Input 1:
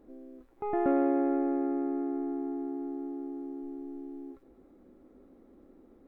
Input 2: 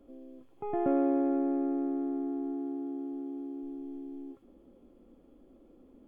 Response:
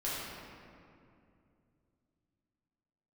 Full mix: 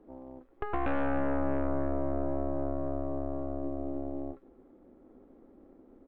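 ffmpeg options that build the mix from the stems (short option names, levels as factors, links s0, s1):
-filter_complex "[0:a]bass=f=250:g=-3,treble=f=4000:g=-9,acrossover=split=200[s0][s1];[s1]acompressor=threshold=0.0112:ratio=3[s2];[s0][s2]amix=inputs=2:normalize=0,volume=1.19[s3];[1:a]adelay=0.6,volume=0.376[s4];[s3][s4]amix=inputs=2:normalize=0,highshelf=f=2000:g=-7,aeval=exprs='0.126*(cos(1*acos(clip(val(0)/0.126,-1,1)))-cos(1*PI/2))+0.0447*(cos(8*acos(clip(val(0)/0.126,-1,1)))-cos(8*PI/2))':c=same,acompressor=threshold=0.0501:ratio=2"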